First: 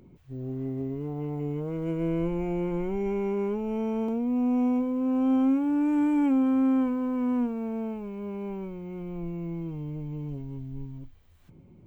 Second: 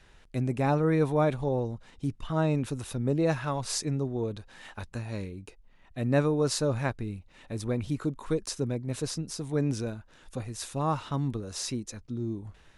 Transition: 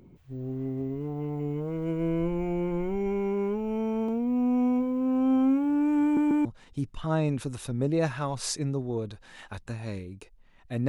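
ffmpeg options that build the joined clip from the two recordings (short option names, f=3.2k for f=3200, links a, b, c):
-filter_complex "[0:a]apad=whole_dur=10.88,atrim=end=10.88,asplit=3[a][b][c];[a]atrim=end=6.172[d];[b]atrim=start=6.028:end=6.172[e];[c]atrim=start=6.028:end=6.172[f];[1:a]atrim=start=1.708:end=6.14[g];[d][e]acrossfade=d=0.004:c1=hsin:c2=hsin[h];[h][f]acrossfade=d=0.004:c1=hsin:c2=hsin[i];[i][g]acrossfade=d=0.004:c1=hsin:c2=hsin"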